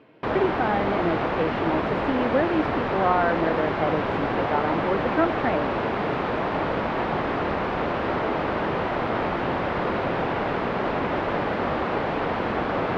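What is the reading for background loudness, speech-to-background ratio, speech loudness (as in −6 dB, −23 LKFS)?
−26.0 LKFS, −1.0 dB, −27.0 LKFS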